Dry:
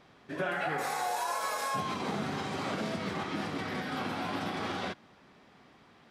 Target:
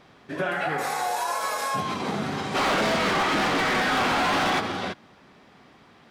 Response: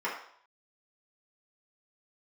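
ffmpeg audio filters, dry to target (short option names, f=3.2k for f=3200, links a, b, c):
-filter_complex "[0:a]asplit=3[a][b][c];[a]afade=t=out:st=2.54:d=0.02[d];[b]asplit=2[e][f];[f]highpass=f=720:p=1,volume=26dB,asoftclip=type=tanh:threshold=-21.5dB[g];[e][g]amix=inputs=2:normalize=0,lowpass=f=3.4k:p=1,volume=-6dB,afade=t=in:st=2.54:d=0.02,afade=t=out:st=4.59:d=0.02[h];[c]afade=t=in:st=4.59:d=0.02[i];[d][h][i]amix=inputs=3:normalize=0,volume=5.5dB"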